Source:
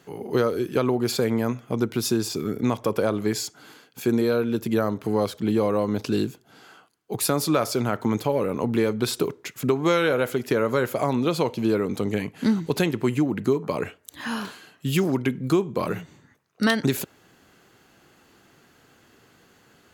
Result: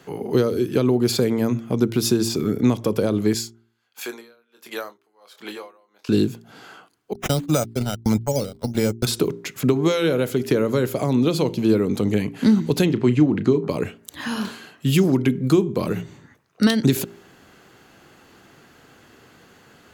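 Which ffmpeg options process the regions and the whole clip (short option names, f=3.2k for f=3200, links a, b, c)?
-filter_complex "[0:a]asettb=1/sr,asplit=3[a][b][c];[a]atrim=end=3.344[d];[b]atrim=start=3.34:end=6.09,asetpts=PTS-STARTPTS,afade=t=in:d=0.004:c=qsin,afade=t=out:st=2.746:d=0.004:c=qsin,highpass=860,asplit=2[e][f];[f]adelay=25,volume=-9.5dB[g];[e][g]amix=inputs=2:normalize=0,atrim=end_sample=121275,aeval=exprs='val(0)*pow(10,-35*(0.5-0.5*cos(2*PI*1.4*n/s))/20)':c=same[h];[c]atrim=start=6.086[i];[d][h]acrossfade=d=0.004:c1=hsin:c2=qsin[j];[j][i]acrossfade=d=0.004:c1=qsin:c2=hsin,asettb=1/sr,asplit=3[k][l][m];[k]atrim=end=7.134[n];[l]atrim=start=7.13:end=9.07,asetpts=PTS-STARTPTS,afade=t=in:d=0.004:c=qsin,afade=t=out:st=1.936:d=0.004:c=qsin,agate=range=-48dB:threshold=-24dB:ratio=16:release=100:detection=peak,aecho=1:1:1.4:0.53,atrim=end_sample=85554,acrusher=samples=8:mix=1:aa=0.000001:lfo=1:lforange=4.8:lforate=1.6[o];[m]atrim=start=9.066[p];[n][o]acrossfade=d=0.004:c1=hsin:c2=qsin[q];[q][p]acrossfade=d=0.004:c1=qsin:c2=hsin,asettb=1/sr,asplit=3[r][s][t];[r]atrim=end=12.854[u];[s]atrim=start=12.85:end=13.69,asetpts=PTS-STARTPTS,afade=t=in:d=0.004:c=qsin,afade=t=out:st=0.836:d=0.004:c=qsin,lowpass=5.1k,asplit=2[v][w];[w]adelay=33,volume=-14dB[x];[v][x]amix=inputs=2:normalize=0,atrim=end_sample=37044[y];[t]atrim=start=13.686[z];[u][y]acrossfade=d=0.004:c1=hsin:c2=qsin[aa];[aa][z]acrossfade=d=0.004:c1=qsin:c2=hsin,highshelf=f=5.1k:g=-4,bandreject=f=57.18:t=h:w=4,bandreject=f=114.36:t=h:w=4,bandreject=f=171.54:t=h:w=4,bandreject=f=228.72:t=h:w=4,bandreject=f=285.9:t=h:w=4,bandreject=f=343.08:t=h:w=4,bandreject=f=400.26:t=h:w=4,acrossover=split=440|3000[ab][ac][ad];[ac]acompressor=threshold=-41dB:ratio=2.5[ae];[ab][ae][ad]amix=inputs=3:normalize=0,volume=6.5dB"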